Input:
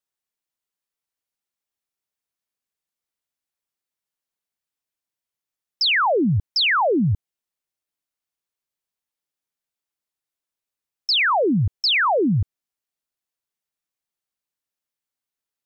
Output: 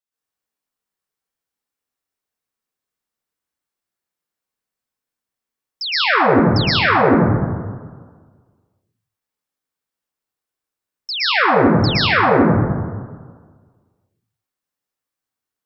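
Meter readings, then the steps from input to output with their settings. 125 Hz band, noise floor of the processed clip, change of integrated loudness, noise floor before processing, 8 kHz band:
+5.5 dB, below −85 dBFS, +4.0 dB, below −85 dBFS, can't be measured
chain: dense smooth reverb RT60 1.6 s, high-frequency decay 0.35×, pre-delay 105 ms, DRR −10 dB
level −5.5 dB

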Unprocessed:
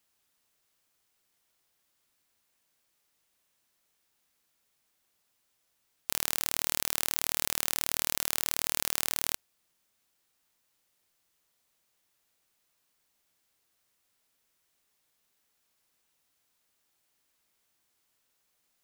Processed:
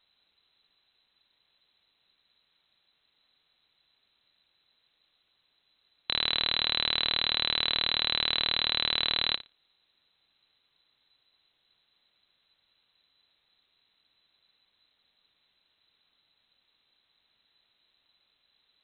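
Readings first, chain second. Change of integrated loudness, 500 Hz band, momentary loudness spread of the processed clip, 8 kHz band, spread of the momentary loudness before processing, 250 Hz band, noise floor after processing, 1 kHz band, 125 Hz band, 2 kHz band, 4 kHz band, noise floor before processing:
+3.5 dB, +3.0 dB, 4 LU, below −40 dB, 4 LU, +2.5 dB, −75 dBFS, +3.5 dB, +3.0 dB, +5.5 dB, +12.0 dB, −76 dBFS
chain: spectral tilt −3 dB per octave
flutter between parallel walls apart 10 metres, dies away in 0.23 s
voice inversion scrambler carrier 4,000 Hz
level +8 dB

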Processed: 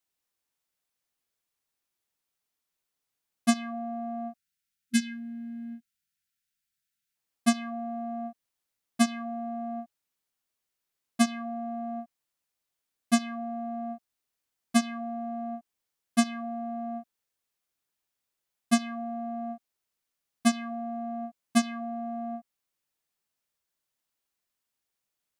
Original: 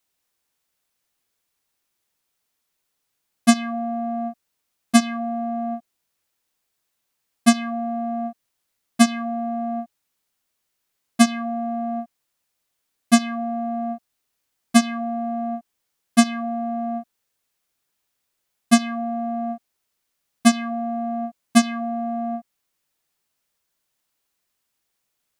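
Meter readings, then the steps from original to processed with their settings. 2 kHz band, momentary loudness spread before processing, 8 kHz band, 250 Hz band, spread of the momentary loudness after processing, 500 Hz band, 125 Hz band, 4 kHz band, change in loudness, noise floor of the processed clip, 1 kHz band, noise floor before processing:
−8.5 dB, 13 LU, −8.5 dB, −8.5 dB, 13 LU, −9.0 dB, can't be measured, −8.5 dB, −8.5 dB, −85 dBFS, −9.0 dB, −77 dBFS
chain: gain on a spectral selection 0:04.37–0:07.16, 250–1,300 Hz −29 dB
level −8.5 dB

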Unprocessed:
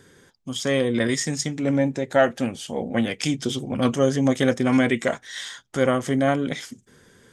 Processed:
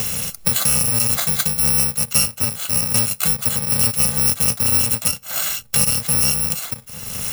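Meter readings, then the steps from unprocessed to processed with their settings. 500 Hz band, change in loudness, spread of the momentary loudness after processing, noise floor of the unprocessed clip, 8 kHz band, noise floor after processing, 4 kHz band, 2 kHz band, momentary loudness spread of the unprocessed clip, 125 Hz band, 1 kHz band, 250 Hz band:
−11.5 dB, +7.0 dB, 6 LU, −59 dBFS, +17.5 dB, −41 dBFS, +8.5 dB, −1.0 dB, 11 LU, +2.0 dB, −2.5 dB, −8.5 dB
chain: samples in bit-reversed order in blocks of 128 samples
multiband upward and downward compressor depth 100%
level +3 dB

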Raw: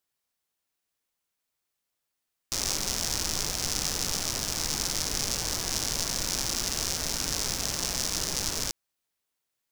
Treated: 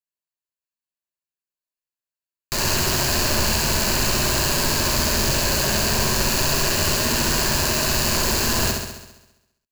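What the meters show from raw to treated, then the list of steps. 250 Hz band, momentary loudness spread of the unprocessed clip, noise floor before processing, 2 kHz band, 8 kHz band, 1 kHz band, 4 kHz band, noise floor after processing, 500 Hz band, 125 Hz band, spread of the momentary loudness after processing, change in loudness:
+13.5 dB, 1 LU, −83 dBFS, +14.0 dB, +5.5 dB, +13.5 dB, +7.5 dB, below −85 dBFS, +14.5 dB, +14.5 dB, 1 LU, +8.5 dB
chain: sub-harmonics by changed cycles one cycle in 3, inverted
leveller curve on the samples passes 2
EQ curve with evenly spaced ripples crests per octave 1.4, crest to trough 8 dB
leveller curve on the samples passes 3
on a send: flutter between parallel walls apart 11.5 metres, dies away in 0.98 s
on the sum: level −6.5 dB

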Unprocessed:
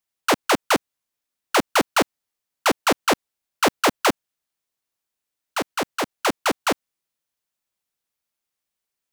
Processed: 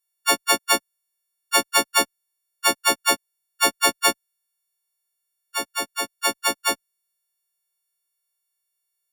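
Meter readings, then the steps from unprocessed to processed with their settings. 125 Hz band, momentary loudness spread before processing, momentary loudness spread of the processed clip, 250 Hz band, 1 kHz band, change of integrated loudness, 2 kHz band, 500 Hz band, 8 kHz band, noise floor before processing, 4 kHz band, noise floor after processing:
−10.5 dB, 8 LU, 9 LU, −7.5 dB, −2.0 dB, +1.0 dB, +0.5 dB, −5.0 dB, +6.0 dB, −84 dBFS, +3.5 dB, −78 dBFS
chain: every partial snapped to a pitch grid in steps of 4 semitones
harmonic generator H 7 −28 dB, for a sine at 5 dBFS
level −5.5 dB

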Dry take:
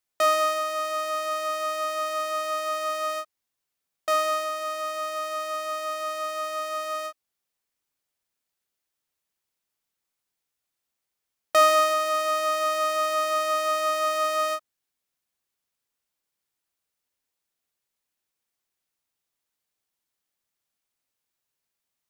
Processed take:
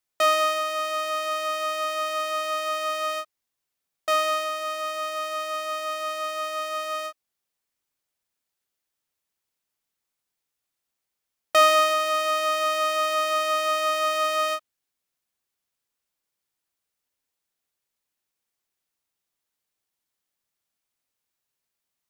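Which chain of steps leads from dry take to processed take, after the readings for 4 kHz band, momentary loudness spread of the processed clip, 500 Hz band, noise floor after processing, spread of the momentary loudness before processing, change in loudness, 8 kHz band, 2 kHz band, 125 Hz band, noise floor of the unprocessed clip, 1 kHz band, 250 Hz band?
+4.0 dB, 9 LU, 0.0 dB, −84 dBFS, 9 LU, +1.0 dB, +0.5 dB, +3.0 dB, can't be measured, −84 dBFS, +0.5 dB, 0.0 dB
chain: dynamic equaliser 2,900 Hz, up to +6 dB, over −42 dBFS, Q 1.5

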